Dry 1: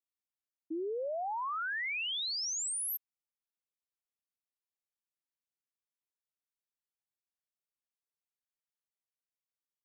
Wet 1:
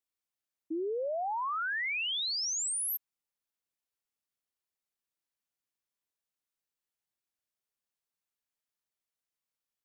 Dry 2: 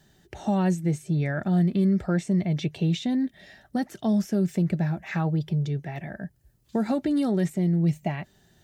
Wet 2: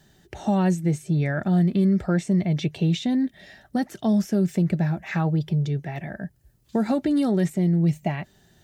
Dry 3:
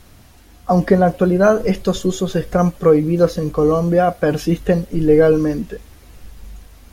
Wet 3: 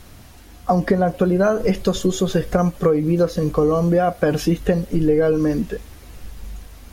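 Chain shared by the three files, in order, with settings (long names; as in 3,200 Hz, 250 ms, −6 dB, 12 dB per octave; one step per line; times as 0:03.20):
downward compressor, threshold −16 dBFS
level +2.5 dB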